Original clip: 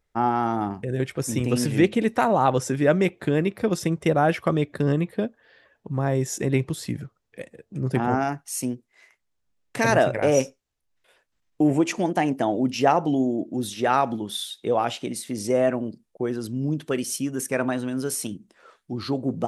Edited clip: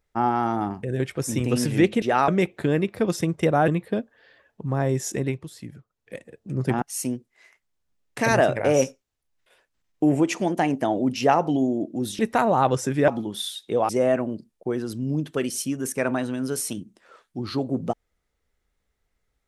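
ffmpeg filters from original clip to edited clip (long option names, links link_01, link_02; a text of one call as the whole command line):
ffmpeg -i in.wav -filter_complex "[0:a]asplit=10[link_01][link_02][link_03][link_04][link_05][link_06][link_07][link_08][link_09][link_10];[link_01]atrim=end=2.022[link_11];[link_02]atrim=start=13.768:end=14.032[link_12];[link_03]atrim=start=2.908:end=4.312[link_13];[link_04]atrim=start=4.938:end=6.65,asetpts=PTS-STARTPTS,afade=type=out:start_time=1.452:duration=0.26:silence=0.334965[link_14];[link_05]atrim=start=6.65:end=7.15,asetpts=PTS-STARTPTS,volume=-9.5dB[link_15];[link_06]atrim=start=7.15:end=8.082,asetpts=PTS-STARTPTS,afade=type=in:duration=0.26:silence=0.334965[link_16];[link_07]atrim=start=8.398:end=13.772[link_17];[link_08]atrim=start=2.018:end=2.912[link_18];[link_09]atrim=start=14.028:end=14.842[link_19];[link_10]atrim=start=15.428[link_20];[link_11][link_12]acrossfade=duration=0.004:curve1=hsin:curve2=hsin[link_21];[link_21][link_13]acrossfade=duration=0.004:curve1=hsin:curve2=hsin[link_22];[link_14][link_15][link_16]concat=n=3:v=0:a=1[link_23];[link_22][link_23]acrossfade=duration=0.004:curve1=hsin:curve2=hsin[link_24];[link_24][link_17]acrossfade=duration=0.004:curve1=hsin:curve2=hsin[link_25];[link_25][link_18]acrossfade=duration=0.004:curve1=hsin:curve2=hsin[link_26];[link_26][link_19]acrossfade=duration=0.004:curve1=hsin:curve2=hsin[link_27];[link_27][link_20]acrossfade=duration=0.004:curve1=hsin:curve2=hsin" out.wav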